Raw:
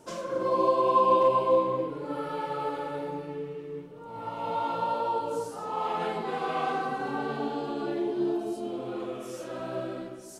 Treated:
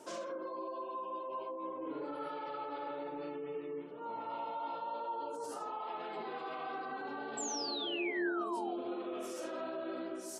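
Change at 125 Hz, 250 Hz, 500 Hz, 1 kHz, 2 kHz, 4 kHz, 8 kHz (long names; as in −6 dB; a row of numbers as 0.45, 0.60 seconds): −20.0, −8.0, −12.0, −11.5, −3.5, +0.5, +5.0 decibels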